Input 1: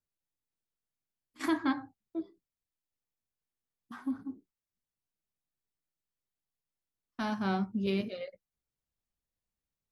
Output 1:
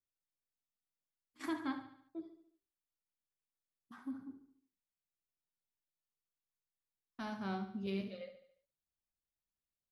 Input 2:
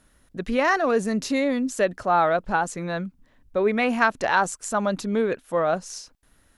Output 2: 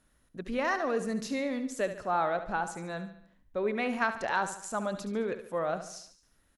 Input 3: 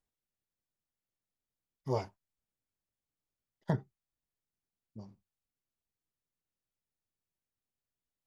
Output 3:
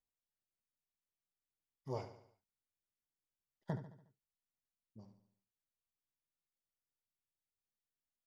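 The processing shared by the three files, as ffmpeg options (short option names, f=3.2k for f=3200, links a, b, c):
-af "aecho=1:1:72|144|216|288|360:0.282|0.138|0.0677|0.0332|0.0162,volume=-9dB"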